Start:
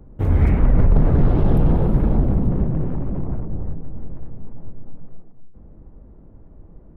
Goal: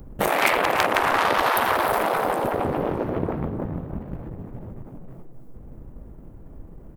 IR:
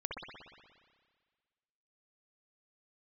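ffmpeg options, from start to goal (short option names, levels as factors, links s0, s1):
-filter_complex "[0:a]aeval=exprs='0.473*(cos(1*acos(clip(val(0)/0.473,-1,1)))-cos(1*PI/2))+0.0335*(cos(4*acos(clip(val(0)/0.473,-1,1)))-cos(4*PI/2))+0.133*(cos(6*acos(clip(val(0)/0.473,-1,1)))-cos(6*PI/2))+0.119*(cos(7*acos(clip(val(0)/0.473,-1,1)))-cos(7*PI/2))':c=same,afftfilt=real='re*lt(hypot(re,im),0.355)':imag='im*lt(hypot(re,im),0.355)':win_size=1024:overlap=0.75,crystalizer=i=5:c=0,asplit=5[s0][s1][s2][s3][s4];[s1]adelay=307,afreqshift=120,volume=0.178[s5];[s2]adelay=614,afreqshift=240,volume=0.0767[s6];[s3]adelay=921,afreqshift=360,volume=0.0327[s7];[s4]adelay=1228,afreqshift=480,volume=0.0141[s8];[s0][s5][s6][s7][s8]amix=inputs=5:normalize=0,volume=1.58"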